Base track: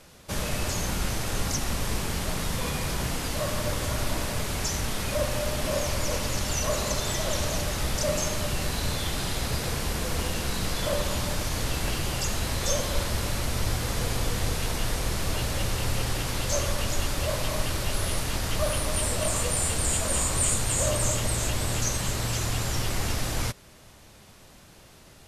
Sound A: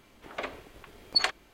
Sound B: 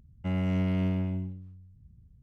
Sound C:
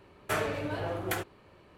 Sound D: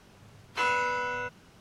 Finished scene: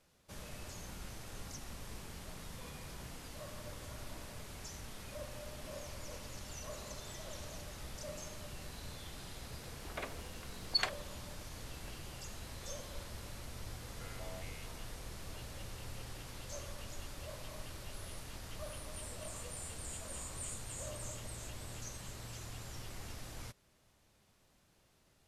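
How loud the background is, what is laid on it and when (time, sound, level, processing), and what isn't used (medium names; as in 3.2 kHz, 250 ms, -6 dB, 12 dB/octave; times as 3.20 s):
base track -19 dB
9.59 s: add A -7.5 dB
13.75 s: add B -16.5 dB + step-sequenced high-pass 4.5 Hz 550–2900 Hz
not used: C, D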